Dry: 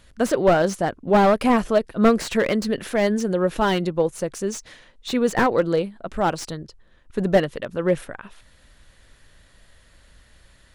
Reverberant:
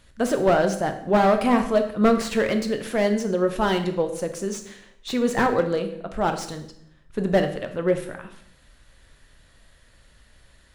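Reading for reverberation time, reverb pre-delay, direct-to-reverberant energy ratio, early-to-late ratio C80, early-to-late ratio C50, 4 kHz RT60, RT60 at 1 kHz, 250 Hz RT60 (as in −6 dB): 0.70 s, 11 ms, 6.0 dB, 12.5 dB, 10.0 dB, 0.65 s, 0.65 s, 0.85 s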